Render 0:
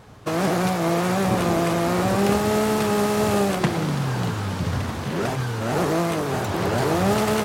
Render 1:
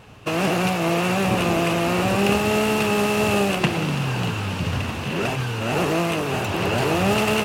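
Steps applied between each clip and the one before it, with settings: peaking EQ 2.7 kHz +14 dB 0.29 oct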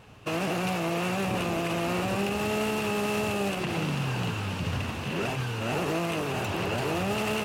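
peak limiter -14 dBFS, peak gain reduction 8 dB; trim -5.5 dB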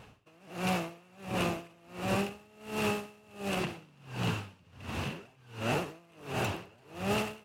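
logarithmic tremolo 1.4 Hz, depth 32 dB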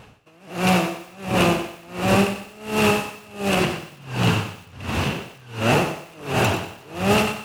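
level rider gain up to 5.5 dB; thinning echo 120 ms, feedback 38%, high-pass 420 Hz, level -14 dB; bit-crushed delay 93 ms, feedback 35%, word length 8-bit, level -10 dB; trim +7 dB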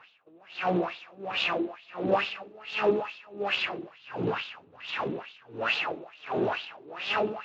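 wah-wah 2.3 Hz 310–3700 Hz, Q 3.5; in parallel at -7 dB: saturation -29.5 dBFS, distortion -9 dB; on the sum: Speex 21 kbps 16 kHz

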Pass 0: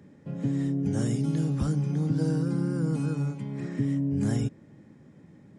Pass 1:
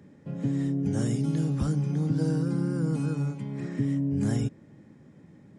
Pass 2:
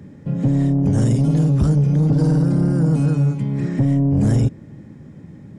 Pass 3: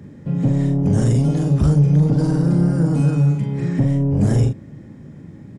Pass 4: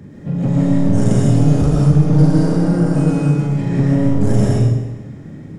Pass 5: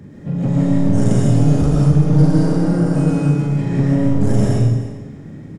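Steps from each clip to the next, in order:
no audible change
bass shelf 160 Hz +11.5 dB; saturation -18.5 dBFS, distortion -15 dB; trim +8 dB
doubling 41 ms -5.5 dB
in parallel at -6 dB: overload inside the chain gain 23 dB; on the sum: algorithmic reverb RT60 1.1 s, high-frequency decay 0.95×, pre-delay 80 ms, DRR -3.5 dB; trim -2 dB
delay 300 ms -16 dB; trim -1 dB

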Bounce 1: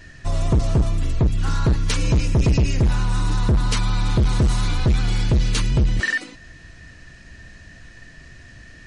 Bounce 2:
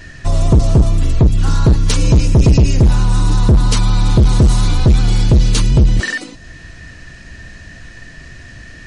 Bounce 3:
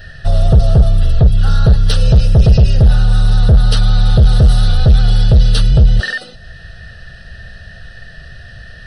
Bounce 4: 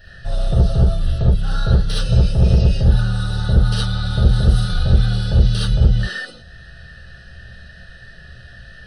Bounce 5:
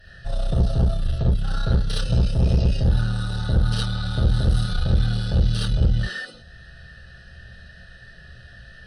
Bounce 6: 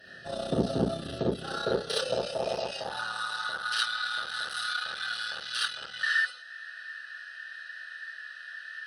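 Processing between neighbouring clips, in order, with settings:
dynamic bell 1.9 kHz, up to -7 dB, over -43 dBFS, Q 0.85; trim +8 dB
static phaser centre 1.5 kHz, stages 8; trim +3 dB
gated-style reverb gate 90 ms rising, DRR -5.5 dB; trim -11.5 dB
valve stage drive 8 dB, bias 0.5; trim -2 dB
high-pass sweep 280 Hz -> 1.5 kHz, 1.09–3.78 s

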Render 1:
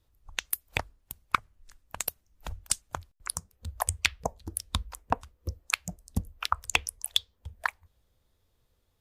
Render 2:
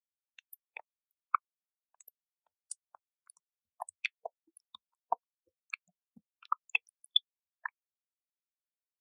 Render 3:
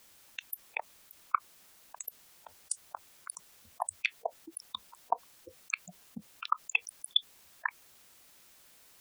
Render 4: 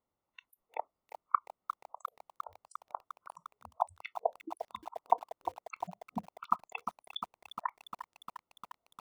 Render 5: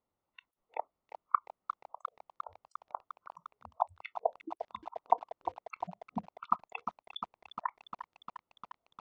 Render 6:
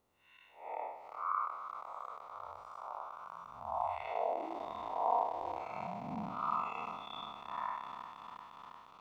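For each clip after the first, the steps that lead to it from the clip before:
high-pass 340 Hz 12 dB/octave; spectral contrast expander 2.5:1; trim -5 dB
level flattener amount 50%
Savitzky-Golay filter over 65 samples; spectral noise reduction 21 dB; bit-crushed delay 352 ms, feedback 80%, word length 9-bit, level -10 dB; trim +4.5 dB
distance through air 160 m; trim +1 dB
spectral blur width 237 ms; trim +11.5 dB

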